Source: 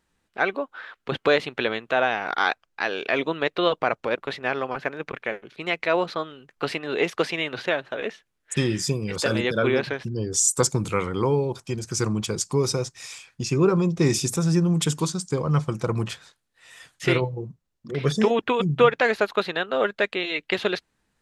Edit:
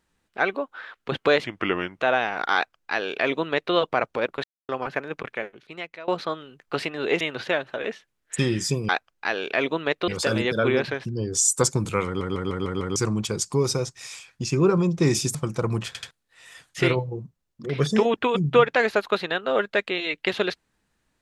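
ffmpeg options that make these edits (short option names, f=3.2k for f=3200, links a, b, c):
-filter_complex "[0:a]asplit=19[a][b][c][d][e][f][g][h][i][j][k][l][m][n][o][p][q][r][s];[a]atrim=end=1.444[t];[b]atrim=start=1.44:end=1.9,asetpts=PTS-STARTPTS,asetrate=35721,aresample=44100,atrim=end_sample=25044,asetpts=PTS-STARTPTS[u];[c]atrim=start=1.896:end=4.33,asetpts=PTS-STARTPTS,afade=t=out:st=2.43:d=0.004:c=hsin[v];[d]atrim=start=4.33:end=4.58,asetpts=PTS-STARTPTS,volume=0[w];[e]atrim=start=4.58:end=5.97,asetpts=PTS-STARTPTS,afade=t=in:d=0.004:c=hsin,afade=t=out:st=0.54:d=0.85:silence=0.0668344[x];[f]atrim=start=5.97:end=7.102,asetpts=PTS-STARTPTS,afade=t=in:d=0.004:c=hsin:silence=0.0668344[y];[g]atrim=start=7.388:end=9.072[z];[h]atrim=start=2.438:end=3.632[aa];[i]atrim=start=9.068:end=11.202[ab];[j]atrim=start=11.048:end=11.202[ac];[k]atrim=start=11.048:end=11.202[ad];[l]atrim=start=11.048:end=11.202[ae];[m]atrim=start=11.048:end=11.202[af];[n]atrim=start=11.048:end=11.202[ag];[o]atrim=start=11.948:end=14.342[ah];[p]atrim=start=15.598:end=16.202[ai];[q]atrim=start=16.118:end=16.202[aj];[r]atrim=start=16.118:end=16.202[ak];[s]atrim=start=16.358[al];[t][u]acrossfade=d=0.004:c1=hsin:c2=hsin[am];[v][w][x][y]concat=n=4:v=0:a=1[an];[am][an]acrossfade=d=0.004:c1=hsin:c2=hsin[ao];[ao][z]acrossfade=d=0.004:c1=hsin:c2=hsin[ap];[ap][aa]acrossfade=d=0.004:c1=hsin:c2=hsin[aq];[aq][ab]acrossfade=d=0.004:c1=hsin:c2=hsin[ar];[ar][ac]acrossfade=d=0.004:c1=hsin:c2=hsin[as];[as][ad]acrossfade=d=0.004:c1=hsin:c2=hsin[at];[at][ae]acrossfade=d=0.004:c1=hsin:c2=hsin[au];[au][af]acrossfade=d=0.004:c1=hsin:c2=hsin[av];[av][ag]acrossfade=d=0.004:c1=hsin:c2=hsin[aw];[aw][ah]acrossfade=d=0.004:c1=hsin:c2=hsin[ax];[ax][ai]acrossfade=d=0.004:c1=hsin:c2=hsin[ay];[ay][aj]acrossfade=d=0.004:c1=hsin:c2=hsin[az];[az][ak]acrossfade=d=0.004:c1=hsin:c2=hsin[ba];[ba][al]acrossfade=d=0.004:c1=hsin:c2=hsin"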